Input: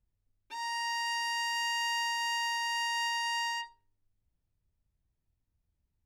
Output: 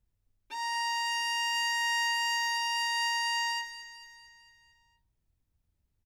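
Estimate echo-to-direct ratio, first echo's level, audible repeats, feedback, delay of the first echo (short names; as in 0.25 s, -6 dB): -11.0 dB, -12.5 dB, 5, 56%, 0.225 s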